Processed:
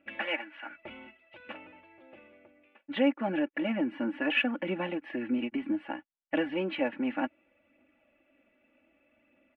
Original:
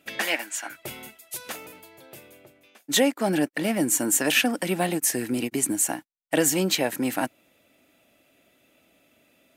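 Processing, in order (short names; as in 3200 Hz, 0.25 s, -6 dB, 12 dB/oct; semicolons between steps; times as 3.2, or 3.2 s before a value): elliptic low-pass 2800 Hz, stop band 60 dB; comb 3.5 ms, depth 76%; phaser 0.64 Hz, delay 5 ms, feedback 27%; gain -7.5 dB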